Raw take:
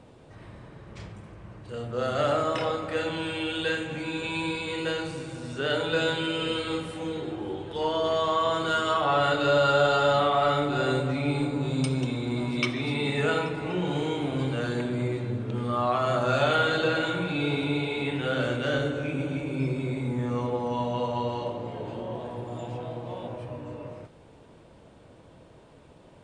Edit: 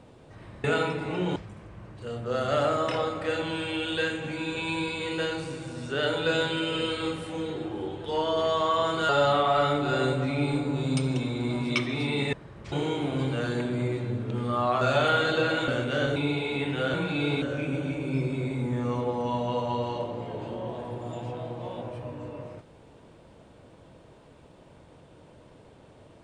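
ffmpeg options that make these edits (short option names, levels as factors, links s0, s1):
-filter_complex "[0:a]asplit=11[s0][s1][s2][s3][s4][s5][s6][s7][s8][s9][s10];[s0]atrim=end=0.642[s11];[s1]atrim=start=13.198:end=13.922[s12];[s2]atrim=start=1.028:end=8.762[s13];[s3]atrim=start=9.958:end=13.202[s14];[s4]atrim=start=0.638:end=1.032[s15];[s5]atrim=start=13.918:end=16.012[s16];[s6]atrim=start=16.268:end=17.142[s17];[s7]atrim=start=18.398:end=18.882[s18];[s8]atrim=start=17.618:end=18.402[s19];[s9]atrim=start=17.138:end=17.622[s20];[s10]atrim=start=18.878[s21];[s11][s12]acrossfade=d=0.004:c1=hsin:c2=hsin[s22];[s22][s13]acrossfade=d=0.004:c1=hsin:c2=hsin[s23];[s23][s14]acrossfade=d=0.004:c1=hsin:c2=hsin[s24];[s24][s15]acrossfade=d=0.004:c1=hsin:c2=hsin[s25];[s25][s16]acrossfade=d=0.004:c1=hsin:c2=hsin[s26];[s26][s17]acrossfade=d=0.004:c1=hsin:c2=hsin[s27];[s27][s18]acrossfade=d=0.004:c1=hsin:c2=hsin[s28];[s28][s19]acrossfade=d=0.004:c1=hsin:c2=hsin[s29];[s29][s20]acrossfade=d=0.004:c1=hsin:c2=hsin[s30];[s30][s21]acrossfade=d=0.004:c1=hsin:c2=hsin"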